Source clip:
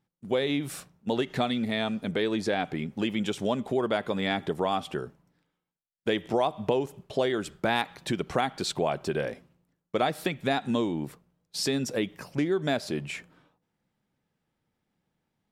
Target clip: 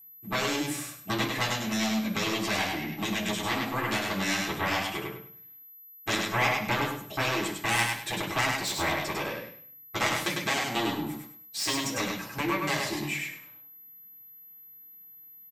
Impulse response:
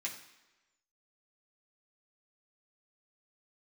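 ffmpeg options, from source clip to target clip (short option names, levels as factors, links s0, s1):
-filter_complex "[0:a]aeval=exprs='0.299*(cos(1*acos(clip(val(0)/0.299,-1,1)))-cos(1*PI/2))+0.106*(cos(7*acos(clip(val(0)/0.299,-1,1)))-cos(7*PI/2))':c=same,aecho=1:1:101|202|303|404:0.668|0.18|0.0487|0.0132,aeval=exprs='val(0)+0.00501*sin(2*PI*12000*n/s)':c=same[s0];[1:a]atrim=start_sample=2205,atrim=end_sample=3528[s1];[s0][s1]afir=irnorm=-1:irlink=0"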